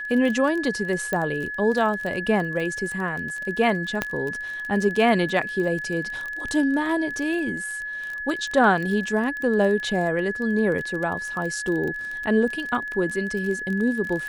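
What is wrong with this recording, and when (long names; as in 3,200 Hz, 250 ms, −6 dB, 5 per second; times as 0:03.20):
surface crackle 25 per second −28 dBFS
whistle 1,700 Hz −29 dBFS
0:01.13: click −12 dBFS
0:04.02: click −8 dBFS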